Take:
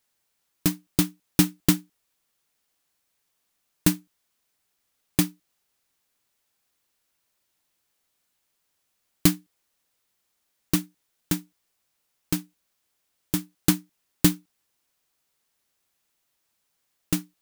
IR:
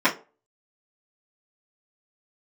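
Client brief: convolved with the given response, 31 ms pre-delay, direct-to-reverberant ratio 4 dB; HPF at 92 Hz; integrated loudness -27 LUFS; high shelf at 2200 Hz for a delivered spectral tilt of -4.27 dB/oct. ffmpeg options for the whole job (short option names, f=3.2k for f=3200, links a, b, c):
-filter_complex "[0:a]highpass=92,highshelf=f=2.2k:g=-3.5,asplit=2[a][b];[1:a]atrim=start_sample=2205,adelay=31[c];[b][c]afir=irnorm=-1:irlink=0,volume=-22.5dB[d];[a][d]amix=inputs=2:normalize=0,volume=-0.5dB"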